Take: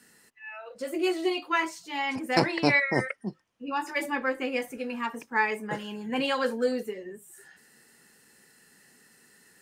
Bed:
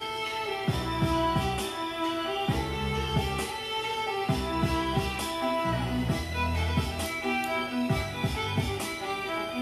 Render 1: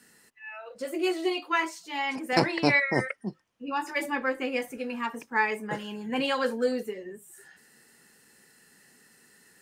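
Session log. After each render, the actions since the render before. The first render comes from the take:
0:00.85–0:02.33: high-pass filter 230 Hz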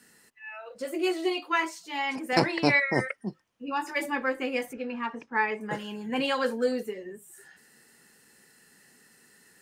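0:04.73–0:05.61: high-frequency loss of the air 160 metres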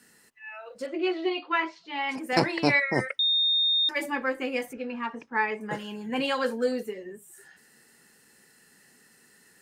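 0:00.86–0:02.09: low-pass filter 4,100 Hz 24 dB per octave
0:03.19–0:03.89: beep over 3,670 Hz −20.5 dBFS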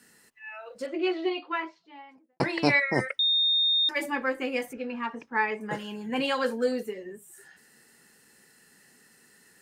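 0:01.09–0:02.40: fade out and dull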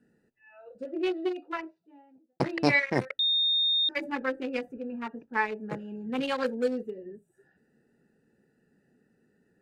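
adaptive Wiener filter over 41 samples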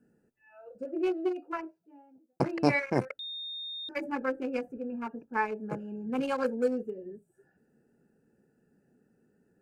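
parametric band 3,600 Hz −14 dB 0.71 octaves
notch filter 1,900 Hz, Q 5.7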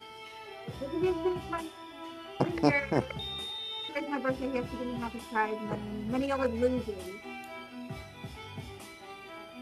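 mix in bed −14 dB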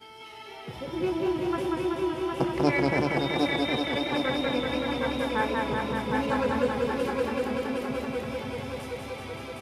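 repeating echo 763 ms, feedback 47%, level −4 dB
feedback echo with a swinging delay time 190 ms, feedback 79%, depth 81 cents, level −3 dB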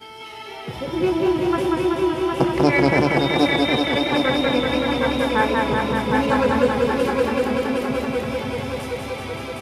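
level +8 dB
brickwall limiter −3 dBFS, peak gain reduction 3 dB

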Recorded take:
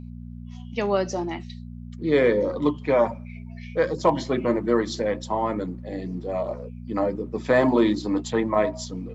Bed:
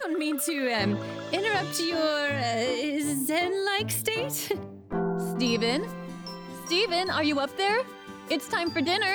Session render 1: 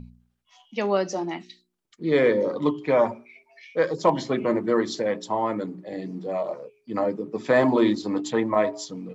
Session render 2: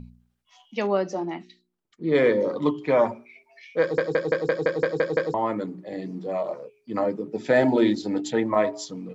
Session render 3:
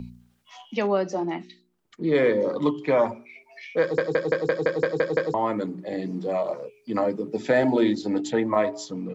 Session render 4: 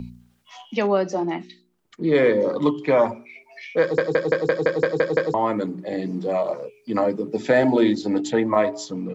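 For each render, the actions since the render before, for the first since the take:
hum removal 60 Hz, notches 7
0:00.87–0:02.15: high-shelf EQ 2,600 Hz −9.5 dB; 0:03.81: stutter in place 0.17 s, 9 plays; 0:07.28–0:08.46: Butterworth band-reject 1,100 Hz, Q 3
multiband upward and downward compressor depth 40%
level +3 dB

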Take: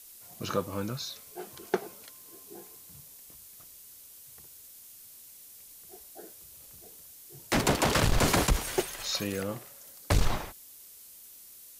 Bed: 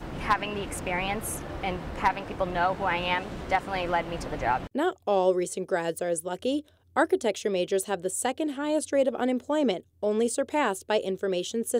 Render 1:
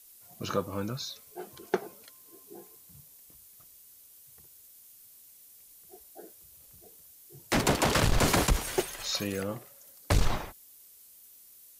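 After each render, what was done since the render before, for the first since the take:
broadband denoise 6 dB, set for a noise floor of −51 dBFS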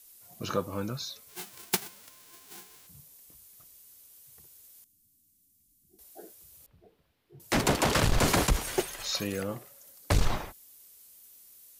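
0:01.28–0:02.86: spectral envelope flattened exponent 0.1
0:04.84–0:05.99: drawn EQ curve 300 Hz 0 dB, 520 Hz −29 dB, 7,500 Hz −13 dB
0:06.66–0:07.40: high-frequency loss of the air 400 metres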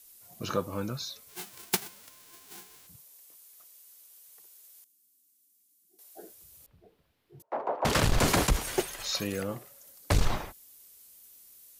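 0:02.96–0:06.17: high-pass filter 450 Hz
0:07.42–0:07.85: flat-topped band-pass 720 Hz, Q 1.3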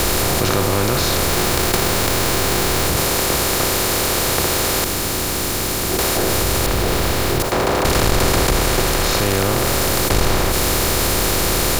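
compressor on every frequency bin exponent 0.2
in parallel at +2 dB: compressor whose output falls as the input rises −26 dBFS, ratio −1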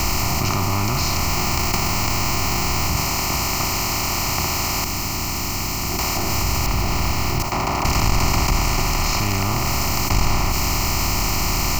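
phaser with its sweep stopped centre 2,400 Hz, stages 8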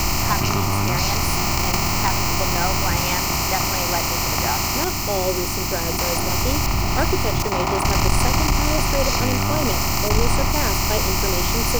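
mix in bed −0.5 dB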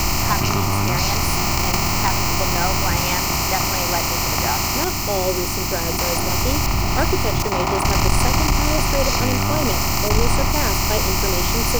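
level +1 dB

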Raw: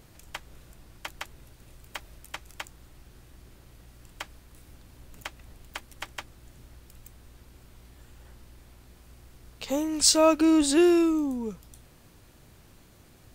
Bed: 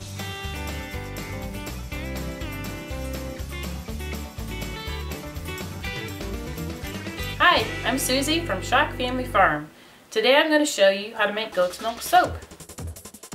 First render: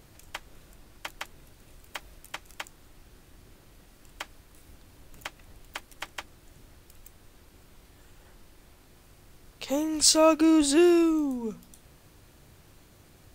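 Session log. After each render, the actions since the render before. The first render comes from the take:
hum removal 60 Hz, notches 4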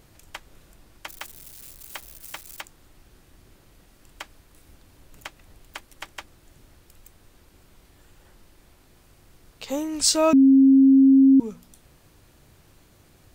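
0:01.09–0:02.61: spike at every zero crossing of −35.5 dBFS
0:10.33–0:11.40: beep over 269 Hz −10.5 dBFS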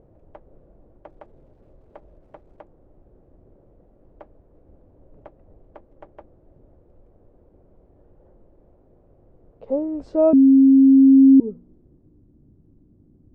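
low-pass filter sweep 550 Hz → 270 Hz, 0:10.72–0:12.27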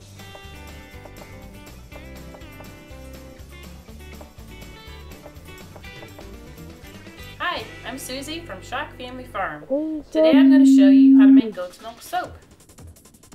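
mix in bed −8.5 dB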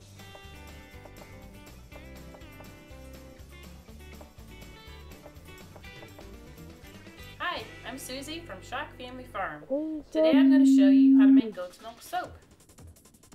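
level −7 dB

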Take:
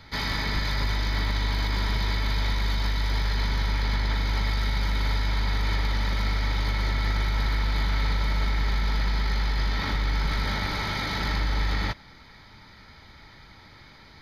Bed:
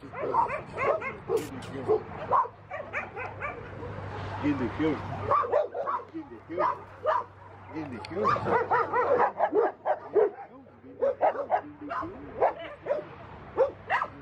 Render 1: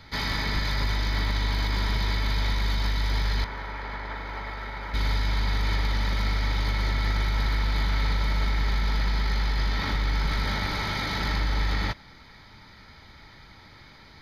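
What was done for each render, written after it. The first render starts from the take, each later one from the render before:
0:03.44–0:04.94: three-way crossover with the lows and the highs turned down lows −13 dB, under 340 Hz, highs −16 dB, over 2,200 Hz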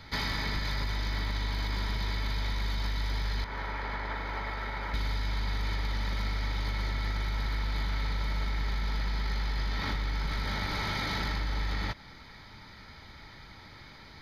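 downward compressor, threshold −28 dBFS, peak gain reduction 7 dB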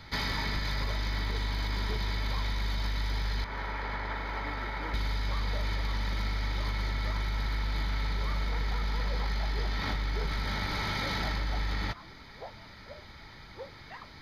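mix in bed −20 dB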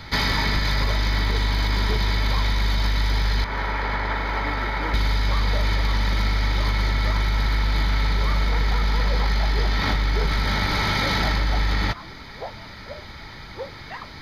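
level +10 dB

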